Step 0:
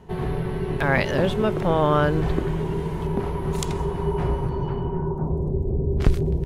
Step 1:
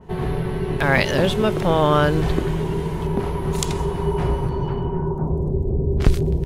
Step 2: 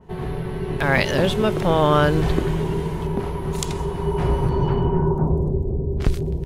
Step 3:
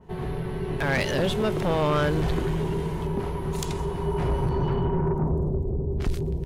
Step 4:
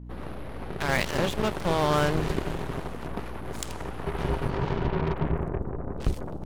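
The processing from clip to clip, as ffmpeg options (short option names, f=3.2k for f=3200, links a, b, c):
-af "adynamicequalizer=threshold=0.0112:dfrequency=2600:dqfactor=0.7:tfrequency=2600:tqfactor=0.7:attack=5:release=100:ratio=0.375:range=3.5:mode=boostabove:tftype=highshelf,volume=2.5dB"
-af "dynaudnorm=f=110:g=13:m=11.5dB,volume=-4dB"
-af "asoftclip=type=tanh:threshold=-15dB,volume=-2.5dB"
-af "aeval=exprs='0.133*(cos(1*acos(clip(val(0)/0.133,-1,1)))-cos(1*PI/2))+0.0531*(cos(3*acos(clip(val(0)/0.133,-1,1)))-cos(3*PI/2))+0.0119*(cos(8*acos(clip(val(0)/0.133,-1,1)))-cos(8*PI/2))':c=same,aeval=exprs='val(0)+0.01*(sin(2*PI*60*n/s)+sin(2*PI*2*60*n/s)/2+sin(2*PI*3*60*n/s)/3+sin(2*PI*4*60*n/s)/4+sin(2*PI*5*60*n/s)/5)':c=same"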